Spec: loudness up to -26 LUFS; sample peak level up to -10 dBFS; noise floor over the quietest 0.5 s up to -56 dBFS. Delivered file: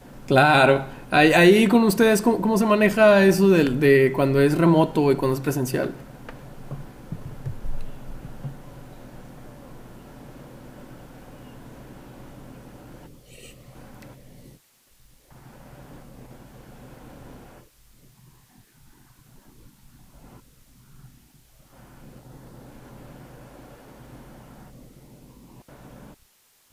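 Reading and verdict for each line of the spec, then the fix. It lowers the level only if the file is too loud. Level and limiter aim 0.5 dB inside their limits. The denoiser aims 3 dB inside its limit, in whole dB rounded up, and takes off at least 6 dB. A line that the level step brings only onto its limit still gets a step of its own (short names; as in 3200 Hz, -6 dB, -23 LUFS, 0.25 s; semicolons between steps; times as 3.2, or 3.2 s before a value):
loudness -18.0 LUFS: fail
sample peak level -5.5 dBFS: fail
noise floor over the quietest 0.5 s -61 dBFS: OK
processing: gain -8.5 dB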